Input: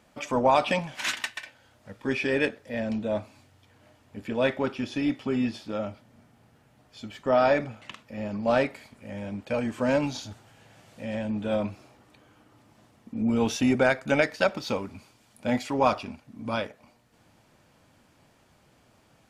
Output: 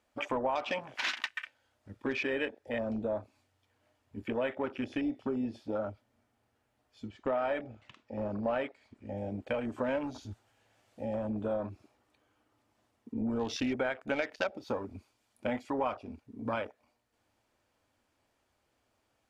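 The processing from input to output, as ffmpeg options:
ffmpeg -i in.wav -filter_complex "[0:a]asettb=1/sr,asplit=3[link_01][link_02][link_03];[link_01]atrim=end=7.074[link_04];[link_02]atrim=start=7.07:end=9.17,asetpts=PTS-STARTPTS,afade=type=in:duration=0.004:curve=qsin,afade=type=out:start_time=2.096:duration=0.004:curve=qsin,lowpass=6500[link_05];[link_03]atrim=start=9.166[link_06];[link_04][link_05]acrossfade=duration=0.004:curve1=hsin:curve2=qsin[link_07];[link_07][link_06]acrossfade=duration=0.004:curve1=qsin:curve2=hsin,afwtdn=0.0141,equalizer=frequency=160:width=2.1:gain=-14.5,acompressor=threshold=-34dB:ratio=4,volume=3dB" out.wav

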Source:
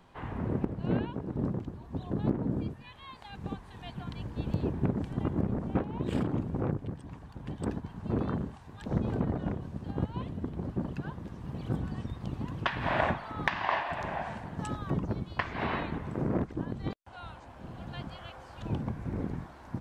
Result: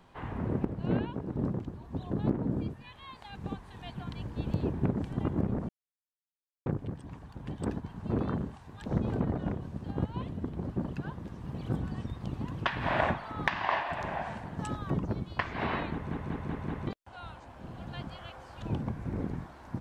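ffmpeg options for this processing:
ffmpeg -i in.wav -filter_complex "[0:a]asplit=8[link_01][link_02][link_03][link_04][link_05][link_06][link_07][link_08];[link_01]atrim=end=5.69,asetpts=PTS-STARTPTS,afade=type=out:start_time=5.686:duration=0.004:curve=hsin[link_09];[link_02]atrim=start=5.69:end=6.66,asetpts=PTS-STARTPTS,volume=0[link_10];[link_03]atrim=start=6.66:end=16.112,asetpts=PTS-STARTPTS,afade=type=in:duration=0.004:curve=hsin[link_11];[link_04]atrim=start=15.918:end=16.112[link_12];[link_05]atrim=start=15.918:end=16.112[link_13];[link_06]atrim=start=15.918:end=16.112[link_14];[link_07]atrim=start=15.918:end=16.112[link_15];[link_08]atrim=start=16.868[link_16];[link_09][link_10][link_11]concat=n=3:v=0:a=1[link_17];[link_17][link_12]acrossfade=duration=0.004:curve1=hsin:curve2=hsin[link_18];[link_18][link_13]acrossfade=duration=0.004:curve1=hsin:curve2=hsin[link_19];[link_19][link_14]acrossfade=duration=0.004:curve1=hsin:curve2=hsin[link_20];[link_20][link_15]acrossfade=duration=0.004:curve1=hsin:curve2=hsin[link_21];[link_21][link_16]acrossfade=duration=0.004:curve1=hsin:curve2=hsin" out.wav

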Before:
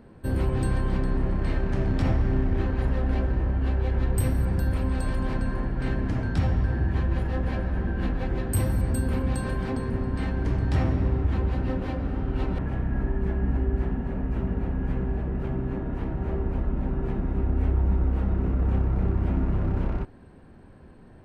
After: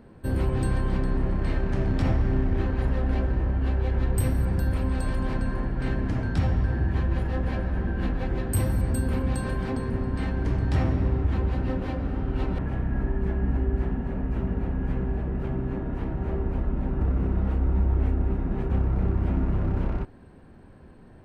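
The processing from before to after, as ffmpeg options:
ffmpeg -i in.wav -filter_complex "[0:a]asplit=3[link_01][link_02][link_03];[link_01]atrim=end=17.012[link_04];[link_02]atrim=start=17.008:end=18.702,asetpts=PTS-STARTPTS,areverse[link_05];[link_03]atrim=start=18.698[link_06];[link_04][link_05]acrossfade=duration=0.004:curve1=hsin:curve2=hsin[link_07];[link_07][link_06]acrossfade=duration=0.004:curve1=hsin:curve2=hsin" out.wav

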